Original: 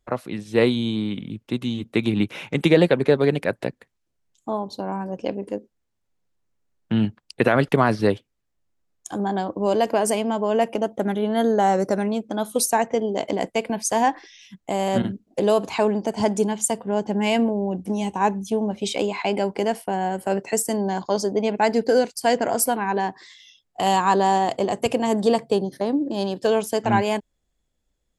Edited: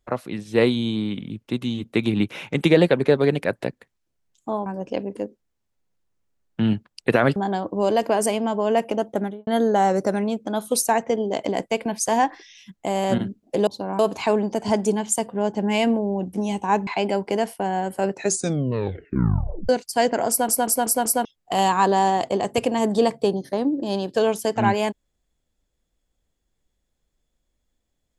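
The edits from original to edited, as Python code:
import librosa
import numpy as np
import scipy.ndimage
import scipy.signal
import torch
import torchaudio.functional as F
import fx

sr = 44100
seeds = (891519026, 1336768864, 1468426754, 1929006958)

y = fx.studio_fade_out(x, sr, start_s=10.98, length_s=0.33)
y = fx.edit(y, sr, fx.move(start_s=4.66, length_s=0.32, to_s=15.51),
    fx.cut(start_s=7.68, length_s=1.52),
    fx.cut(start_s=18.39, length_s=0.76),
    fx.tape_stop(start_s=20.41, length_s=1.56),
    fx.stutter_over(start_s=22.58, slice_s=0.19, count=5), tone=tone)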